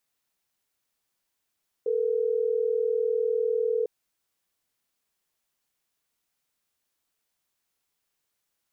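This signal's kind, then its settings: call progress tone ringback tone, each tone -25.5 dBFS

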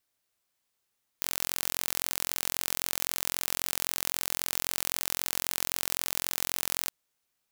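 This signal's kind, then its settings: pulse train 43.8/s, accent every 0, -2.5 dBFS 5.67 s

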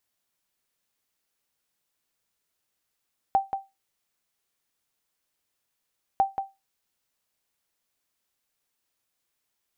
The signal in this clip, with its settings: sonar ping 781 Hz, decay 0.22 s, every 2.85 s, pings 2, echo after 0.18 s, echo -8 dB -13 dBFS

